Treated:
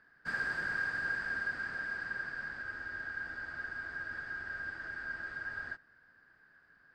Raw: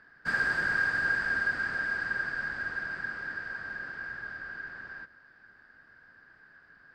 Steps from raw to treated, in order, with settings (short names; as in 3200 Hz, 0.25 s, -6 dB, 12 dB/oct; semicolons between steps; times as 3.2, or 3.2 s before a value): spectral freeze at 2.65, 3.10 s; gain -7 dB